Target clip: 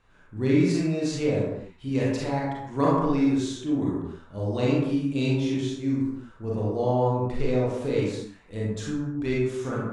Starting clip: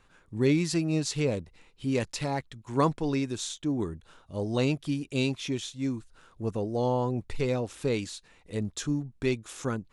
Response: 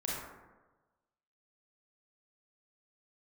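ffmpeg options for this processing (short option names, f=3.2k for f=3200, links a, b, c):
-filter_complex "[0:a]highshelf=f=6.8k:g=-9.5[a];[1:a]atrim=start_sample=2205,afade=t=out:st=0.38:d=0.01,atrim=end_sample=17199[b];[a][b]afir=irnorm=-1:irlink=0,volume=-1dB"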